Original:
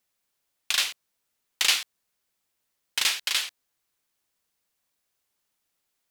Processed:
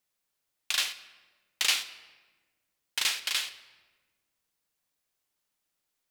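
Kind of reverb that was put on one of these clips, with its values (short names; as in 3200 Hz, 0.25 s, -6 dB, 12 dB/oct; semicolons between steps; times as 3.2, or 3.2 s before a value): shoebox room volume 1100 m³, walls mixed, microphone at 0.5 m; gain -4 dB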